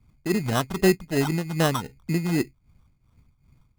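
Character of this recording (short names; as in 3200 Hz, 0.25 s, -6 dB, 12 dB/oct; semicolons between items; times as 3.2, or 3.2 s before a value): phasing stages 6, 3.8 Hz, lowest notch 470–2400 Hz; aliases and images of a low sample rate 2300 Hz, jitter 0%; tremolo triangle 2.6 Hz, depth 80%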